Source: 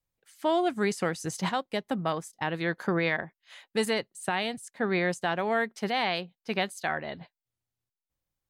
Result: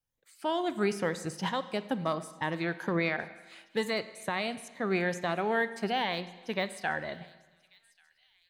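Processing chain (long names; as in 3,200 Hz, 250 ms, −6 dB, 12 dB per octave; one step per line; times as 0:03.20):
rippled gain that drifts along the octave scale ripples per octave 1.1, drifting +2.2 Hz, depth 8 dB
de-essing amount 80%
delay with a high-pass on its return 1,138 ms, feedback 42%, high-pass 3,200 Hz, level −20 dB
on a send at −13 dB: convolution reverb RT60 1.2 s, pre-delay 35 ms
on the sum: level −3 dB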